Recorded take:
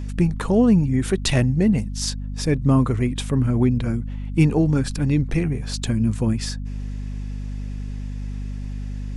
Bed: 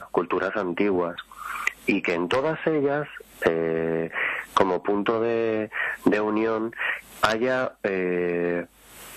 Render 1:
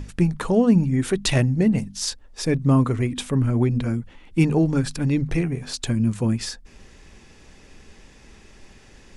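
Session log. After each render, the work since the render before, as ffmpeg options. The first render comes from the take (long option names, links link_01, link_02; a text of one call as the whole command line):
ffmpeg -i in.wav -af "bandreject=frequency=50:width_type=h:width=6,bandreject=frequency=100:width_type=h:width=6,bandreject=frequency=150:width_type=h:width=6,bandreject=frequency=200:width_type=h:width=6,bandreject=frequency=250:width_type=h:width=6" out.wav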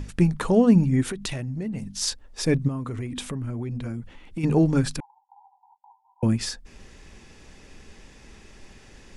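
ffmpeg -i in.wav -filter_complex "[0:a]asplit=3[link_01][link_02][link_03];[link_01]afade=type=out:start_time=1.02:duration=0.02[link_04];[link_02]acompressor=threshold=-27dB:ratio=8:attack=3.2:release=140:knee=1:detection=peak,afade=type=in:start_time=1.02:duration=0.02,afade=type=out:start_time=1.94:duration=0.02[link_05];[link_03]afade=type=in:start_time=1.94:duration=0.02[link_06];[link_04][link_05][link_06]amix=inputs=3:normalize=0,asplit=3[link_07][link_08][link_09];[link_07]afade=type=out:start_time=2.67:duration=0.02[link_10];[link_08]acompressor=threshold=-28dB:ratio=5:attack=3.2:release=140:knee=1:detection=peak,afade=type=in:start_time=2.67:duration=0.02,afade=type=out:start_time=4.43:duration=0.02[link_11];[link_09]afade=type=in:start_time=4.43:duration=0.02[link_12];[link_10][link_11][link_12]amix=inputs=3:normalize=0,asettb=1/sr,asplit=3[link_13][link_14][link_15];[link_13]atrim=end=5.004[link_16];[link_14]atrim=start=5:end=6.23,asetpts=PTS-STARTPTS,afade=type=in:duration=0.004:curve=qsin,afade=type=out:start_time=1.226:duration=0.004:curve=qsin,asuperpass=centerf=870:order=12:qfactor=3.8[link_17];[link_15]atrim=start=6.226[link_18];[link_16][link_17]acrossfade=duration=0.004:curve1=hsin:curve2=qsin[link_19];[link_19][link_18]acrossfade=duration=0.004:curve1=qsin:curve2=hsin" out.wav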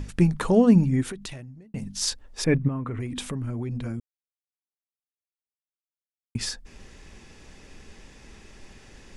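ffmpeg -i in.wav -filter_complex "[0:a]asettb=1/sr,asplit=3[link_01][link_02][link_03];[link_01]atrim=end=2.444[link_04];[link_02]atrim=start=2.44:end=3,asetpts=PTS-STARTPTS,afade=type=in:duration=0.004:curve=qsin,afade=type=out:start_time=0.556:duration=0.004:curve=qsin,highshelf=frequency=3400:width_type=q:width=1.5:gain=-13.5[link_05];[link_03]atrim=start=2.996[link_06];[link_04][link_05]acrossfade=duration=0.004:curve1=hsin:curve2=qsin[link_07];[link_07][link_06]acrossfade=duration=0.004:curve1=qsin:curve2=hsin,asplit=4[link_08][link_09][link_10][link_11];[link_08]atrim=end=1.74,asetpts=PTS-STARTPTS,afade=type=out:start_time=0.77:duration=0.97[link_12];[link_09]atrim=start=1.74:end=4,asetpts=PTS-STARTPTS,afade=type=in:duration=0.004:curve=hsin,afade=type=out:start_time=2.256:duration=0.004:curve=hsin[link_13];[link_10]atrim=start=4:end=6.35,asetpts=PTS-STARTPTS,volume=0[link_14];[link_11]atrim=start=6.35,asetpts=PTS-STARTPTS,afade=type=in:duration=0.004:curve=hsin[link_15];[link_12][link_13][link_14][link_15]concat=n=4:v=0:a=1" out.wav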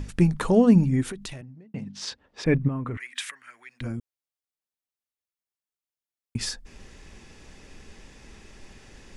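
ffmpeg -i in.wav -filter_complex "[0:a]asettb=1/sr,asplit=3[link_01][link_02][link_03];[link_01]atrim=end=1.414[link_04];[link_02]atrim=start=1.41:end=2.46,asetpts=PTS-STARTPTS,afade=type=in:duration=0.004:curve=qsin,afade=type=out:start_time=1.046:duration=0.004:curve=qsin,highpass=120,lowpass=3600[link_05];[link_03]atrim=start=2.456[link_06];[link_04][link_05]acrossfade=duration=0.004:curve1=hsin:curve2=qsin[link_07];[link_07][link_06]acrossfade=duration=0.004:curve1=qsin:curve2=hsin,asettb=1/sr,asplit=3[link_08][link_09][link_10];[link_08]atrim=end=2.974[link_11];[link_09]atrim=start=2.97:end=3.81,asetpts=PTS-STARTPTS,afade=type=in:duration=0.004:curve=qsin,afade=type=out:start_time=0.836:duration=0.004:curve=qsin,highpass=frequency=1800:width_type=q:width=3.5[link_12];[link_10]atrim=start=3.806[link_13];[link_11][link_12]acrossfade=duration=0.004:curve1=hsin:curve2=qsin[link_14];[link_14][link_13]acrossfade=duration=0.004:curve1=qsin:curve2=hsin" out.wav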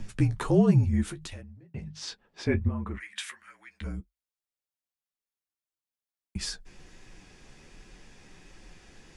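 ffmpeg -i in.wav -af "afreqshift=-46,flanger=delay=9:depth=5.5:regen=-30:speed=1.4:shape=sinusoidal" out.wav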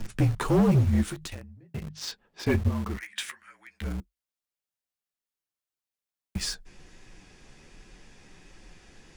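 ffmpeg -i in.wav -filter_complex "[0:a]asplit=2[link_01][link_02];[link_02]acrusher=bits=5:mix=0:aa=0.000001,volume=-8dB[link_03];[link_01][link_03]amix=inputs=2:normalize=0,asoftclip=type=hard:threshold=-17dB" out.wav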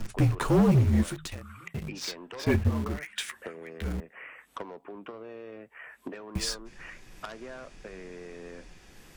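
ffmpeg -i in.wav -i bed.wav -filter_complex "[1:a]volume=-19.5dB[link_01];[0:a][link_01]amix=inputs=2:normalize=0" out.wav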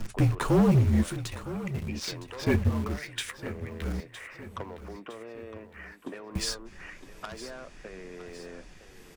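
ffmpeg -i in.wav -af "aecho=1:1:961|1922|2883|3844:0.2|0.0938|0.0441|0.0207" out.wav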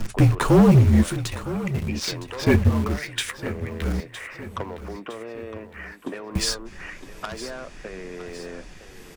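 ffmpeg -i in.wav -af "volume=7dB" out.wav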